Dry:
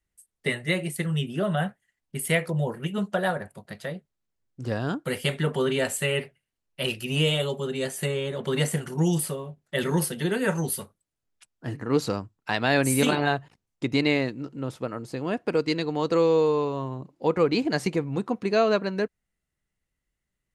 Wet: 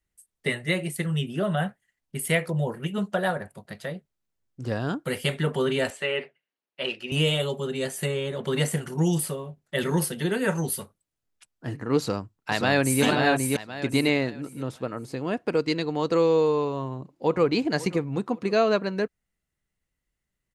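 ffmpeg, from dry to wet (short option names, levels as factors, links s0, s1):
-filter_complex "[0:a]asettb=1/sr,asplit=3[s0][s1][s2];[s0]atrim=end=5.904[s3];[s1]atrim=start=5.9:end=7.12,asetpts=PTS-STARTPTS,afade=t=in:d=0.004:c=qsin,afade=t=out:st=1.216:d=0.004:c=qsin,highpass=310,lowpass=3800[s4];[s2]atrim=start=7.116[s5];[s3][s4]acrossfade=d=0.004:c1=hsin:c2=qsin[s6];[s6][s5]acrossfade=d=0.004:c1=qsin:c2=hsin,asplit=2[s7][s8];[s8]afade=t=in:st=11.98:d=0.01,afade=t=out:st=13.03:d=0.01,aecho=0:1:530|1060|1590|2120:0.707946|0.212384|0.0637151|0.0191145[s9];[s7][s9]amix=inputs=2:normalize=0,asplit=2[s10][s11];[s11]afade=t=in:st=16.74:d=0.01,afade=t=out:st=17.45:d=0.01,aecho=0:1:540|1080|1620:0.141254|0.0494388|0.0173036[s12];[s10][s12]amix=inputs=2:normalize=0"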